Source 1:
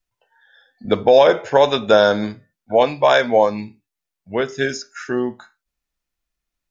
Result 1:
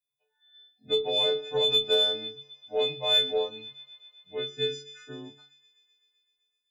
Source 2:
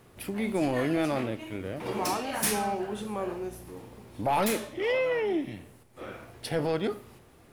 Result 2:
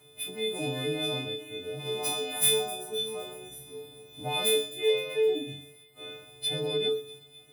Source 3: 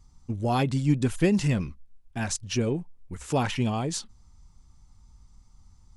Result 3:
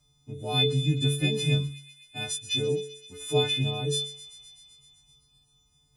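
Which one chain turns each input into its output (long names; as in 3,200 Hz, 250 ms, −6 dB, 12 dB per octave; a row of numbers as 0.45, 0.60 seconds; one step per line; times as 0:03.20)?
every partial snapped to a pitch grid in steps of 3 semitones
high-pass filter 43 Hz
stiff-string resonator 140 Hz, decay 0.56 s, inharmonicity 0.008
delay with a high-pass on its return 128 ms, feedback 76%, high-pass 2,400 Hz, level −15 dB
harmonic generator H 2 −26 dB, 3 −22 dB, 5 −27 dB, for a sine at −13.5 dBFS
dynamic equaliser 6,200 Hz, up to −4 dB, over −48 dBFS, Q 1.4
normalise the peak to −12 dBFS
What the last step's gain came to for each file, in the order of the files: +2.0, +13.5, +13.5 decibels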